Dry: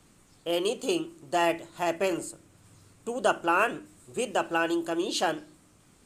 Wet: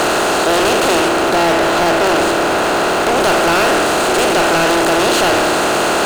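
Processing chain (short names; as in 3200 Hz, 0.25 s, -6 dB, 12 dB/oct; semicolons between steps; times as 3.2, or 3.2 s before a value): per-bin compression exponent 0.2; 1.08–3.2 high shelf 4600 Hz -7 dB; sample leveller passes 5; gain -5.5 dB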